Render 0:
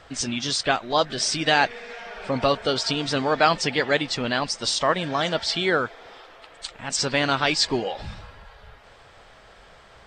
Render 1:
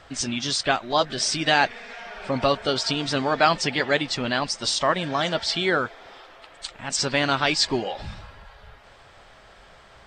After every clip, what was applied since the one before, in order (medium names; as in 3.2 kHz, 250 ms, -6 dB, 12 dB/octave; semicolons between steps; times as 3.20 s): band-stop 470 Hz, Q 12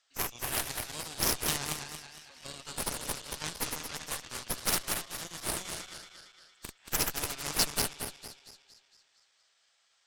backward echo that repeats 115 ms, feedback 73%, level -2.5 dB; band-pass filter 6.7 kHz, Q 1.6; Chebyshev shaper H 3 -15 dB, 6 -13 dB, 7 -19 dB, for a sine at -11.5 dBFS